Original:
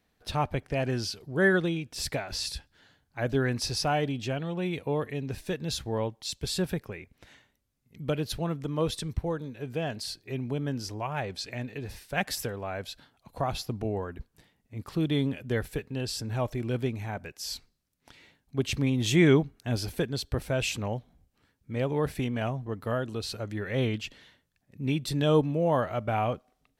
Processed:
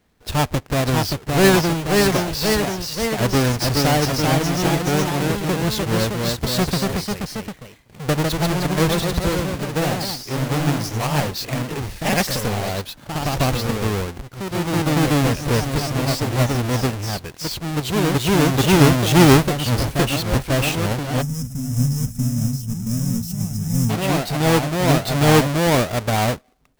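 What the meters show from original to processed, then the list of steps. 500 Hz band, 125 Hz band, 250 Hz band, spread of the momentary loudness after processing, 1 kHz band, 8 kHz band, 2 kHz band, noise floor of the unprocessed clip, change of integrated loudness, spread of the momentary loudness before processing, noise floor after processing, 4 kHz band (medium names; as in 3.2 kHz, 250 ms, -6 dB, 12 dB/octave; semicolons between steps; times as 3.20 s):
+9.0 dB, +12.0 dB, +11.0 dB, 10 LU, +12.0 dB, +13.5 dB, +10.0 dB, -74 dBFS, +10.5 dB, 11 LU, -43 dBFS, +11.5 dB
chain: square wave that keeps the level; ever faster or slower copies 607 ms, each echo +1 st, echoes 3; time-frequency box 21.22–23.90 s, 270–5000 Hz -22 dB; trim +4 dB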